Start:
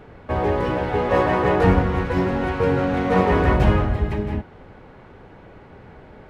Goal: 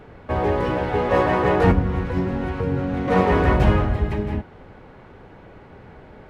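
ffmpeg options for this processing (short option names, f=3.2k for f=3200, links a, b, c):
-filter_complex "[0:a]asettb=1/sr,asplit=3[a][b][c];[a]atrim=end=1.714[d];[b]atrim=start=1.71:end=3.08,asetpts=PTS-STARTPTS,afade=t=in:d=0.004:c=qsin,afade=t=out:st=1.366:d=0.004:c=qsin,acrossover=split=310[e][f];[f]acompressor=threshold=-29dB:ratio=6[g];[e][g]amix=inputs=2:normalize=0[h];[c]atrim=start=3.076[i];[d][h]acrossfade=d=0.004:c1=hsin:c2=qsin[j];[j][i]acrossfade=d=0.004:c1=qsin:c2=hsin"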